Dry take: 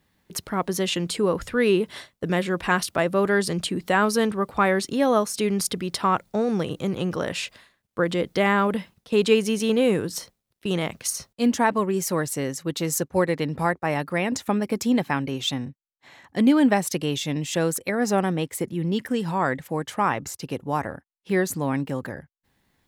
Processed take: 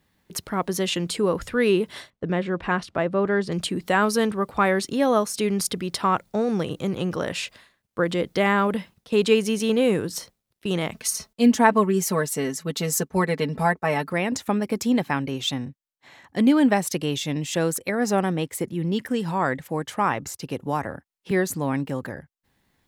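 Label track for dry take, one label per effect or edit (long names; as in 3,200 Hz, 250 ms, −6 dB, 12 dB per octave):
2.100000	3.520000	head-to-tape spacing loss at 10 kHz 21 dB
10.920000	14.130000	comb filter 4.6 ms, depth 70%
20.620000	21.310000	multiband upward and downward compressor depth 40%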